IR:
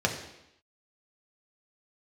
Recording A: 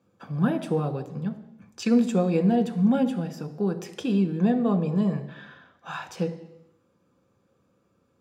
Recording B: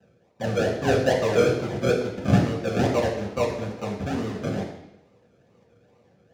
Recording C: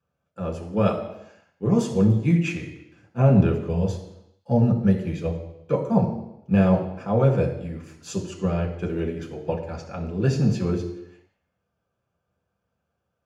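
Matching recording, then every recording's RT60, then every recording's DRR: C; 0.85 s, 0.85 s, 0.85 s; 6.5 dB, -5.0 dB, 0.5 dB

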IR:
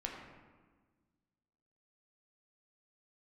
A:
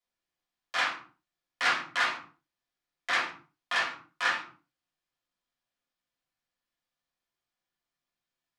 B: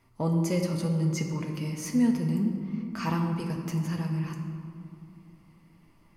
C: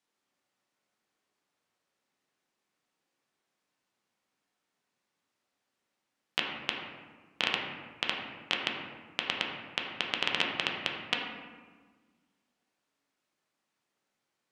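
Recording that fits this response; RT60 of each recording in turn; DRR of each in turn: C; 0.50 s, 2.6 s, 1.4 s; -6.0 dB, 1.0 dB, -1.0 dB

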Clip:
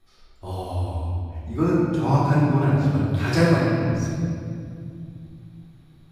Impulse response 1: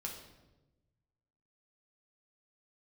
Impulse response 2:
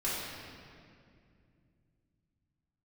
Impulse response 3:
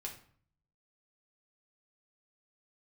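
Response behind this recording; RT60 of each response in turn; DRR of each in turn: 2; 1.1 s, 2.3 s, 0.50 s; -1.0 dB, -9.5 dB, -1.0 dB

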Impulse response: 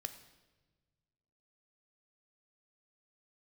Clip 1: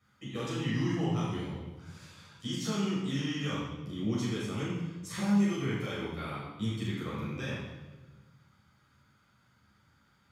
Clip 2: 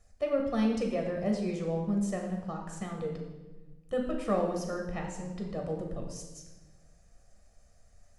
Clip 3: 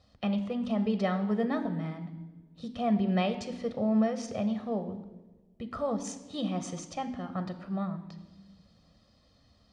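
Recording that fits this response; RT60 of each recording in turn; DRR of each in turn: 3; 1.3 s, 1.3 s, 1.3 s; -8.5 dB, 1.0 dB, 9.0 dB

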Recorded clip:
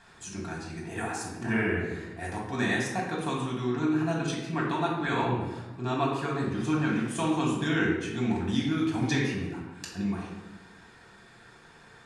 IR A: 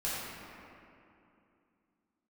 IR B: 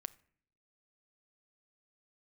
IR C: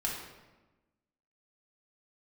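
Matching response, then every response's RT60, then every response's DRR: C; 2.7 s, 0.60 s, 1.2 s; -9.5 dB, 15.0 dB, -3.5 dB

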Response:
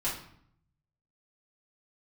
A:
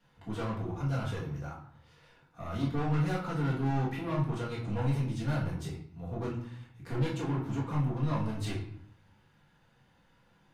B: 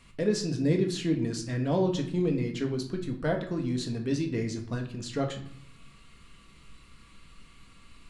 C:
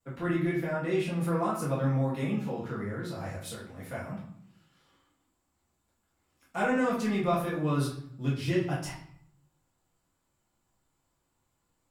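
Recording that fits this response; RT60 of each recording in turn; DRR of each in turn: A; 0.65 s, 0.65 s, 0.65 s; -7.5 dB, 2.5 dB, -17.5 dB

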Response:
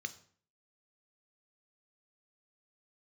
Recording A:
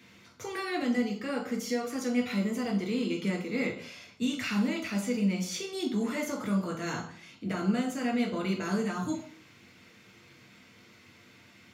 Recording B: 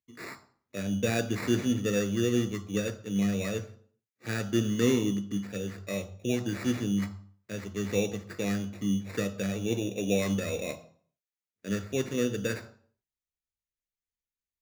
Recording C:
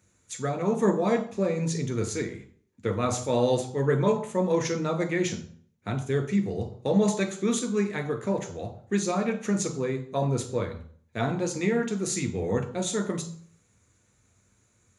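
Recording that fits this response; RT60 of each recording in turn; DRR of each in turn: B; 0.50 s, 0.50 s, 0.50 s; 0.0 dB, 10.0 dB, 5.0 dB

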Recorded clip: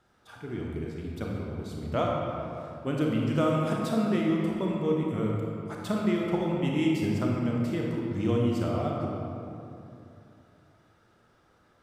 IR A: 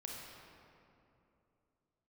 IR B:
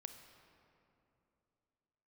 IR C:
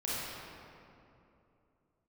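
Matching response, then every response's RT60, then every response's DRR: A; 2.8 s, 2.9 s, 2.8 s; -2.0 dB, 7.0 dB, -9.0 dB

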